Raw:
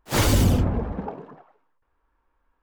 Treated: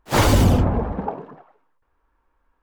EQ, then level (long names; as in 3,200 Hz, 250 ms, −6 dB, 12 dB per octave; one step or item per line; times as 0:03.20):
high-shelf EQ 5,100 Hz −4.5 dB
dynamic equaliser 850 Hz, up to +5 dB, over −39 dBFS, Q 1
+3.0 dB